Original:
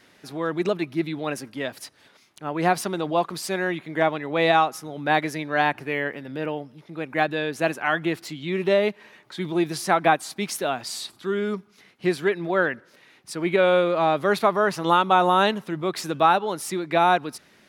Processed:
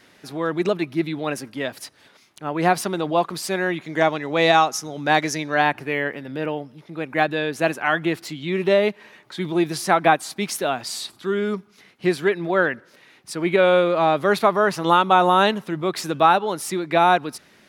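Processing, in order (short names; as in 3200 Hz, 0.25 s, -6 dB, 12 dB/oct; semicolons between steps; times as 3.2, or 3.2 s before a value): 3.81–5.55 bell 6100 Hz +12.5 dB 0.71 oct; gain +2.5 dB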